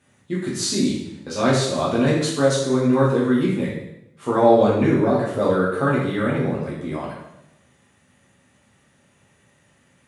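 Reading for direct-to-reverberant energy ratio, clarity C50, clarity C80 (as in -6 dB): -6.5 dB, 2.0 dB, 5.5 dB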